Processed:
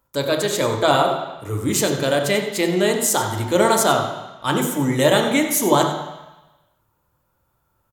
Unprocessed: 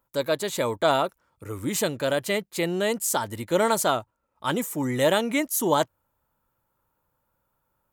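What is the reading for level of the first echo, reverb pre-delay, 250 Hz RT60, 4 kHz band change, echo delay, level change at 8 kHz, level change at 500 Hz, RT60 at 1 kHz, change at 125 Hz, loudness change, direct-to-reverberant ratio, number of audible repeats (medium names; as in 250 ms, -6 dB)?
-11.5 dB, 3 ms, 1.0 s, +7.0 dB, 93 ms, +7.0 dB, +5.5 dB, 1.1 s, +9.0 dB, +6.0 dB, 2.5 dB, 1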